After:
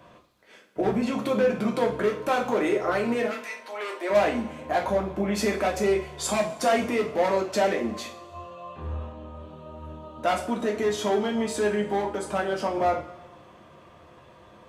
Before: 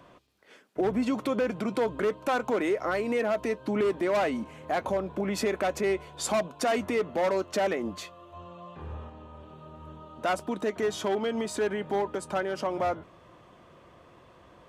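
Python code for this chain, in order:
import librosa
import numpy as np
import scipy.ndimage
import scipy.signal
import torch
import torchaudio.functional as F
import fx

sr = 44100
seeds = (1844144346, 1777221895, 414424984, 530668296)

y = fx.highpass(x, sr, hz=fx.line((3.26, 1300.0), (4.09, 410.0)), slope=24, at=(3.26, 4.09), fade=0.02)
y = fx.rev_double_slope(y, sr, seeds[0], early_s=0.36, late_s=1.6, knee_db=-18, drr_db=-1.0)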